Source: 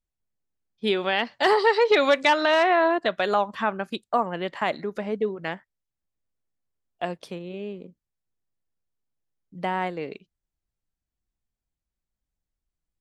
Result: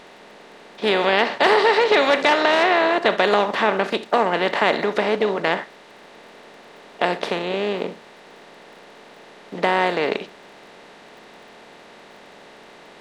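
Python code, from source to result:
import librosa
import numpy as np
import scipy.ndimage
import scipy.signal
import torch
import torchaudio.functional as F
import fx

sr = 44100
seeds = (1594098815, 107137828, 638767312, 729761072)

y = fx.bin_compress(x, sr, power=0.4)
y = fx.dmg_crackle(y, sr, seeds[0], per_s=29.0, level_db=-43.0)
y = fx.room_flutter(y, sr, wall_m=11.6, rt60_s=0.23)
y = F.gain(torch.from_numpy(y), -1.0).numpy()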